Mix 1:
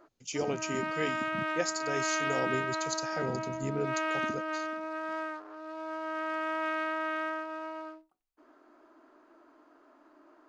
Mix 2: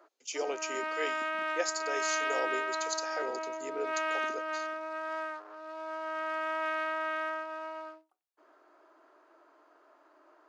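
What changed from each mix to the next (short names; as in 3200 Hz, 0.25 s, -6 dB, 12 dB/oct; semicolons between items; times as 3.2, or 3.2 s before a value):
master: add HPF 390 Hz 24 dB/oct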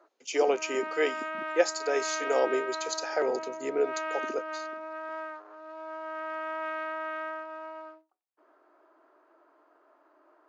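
speech +10.0 dB; master: add high shelf 3200 Hz -12 dB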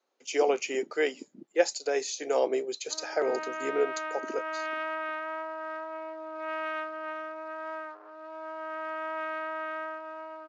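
background: entry +2.55 s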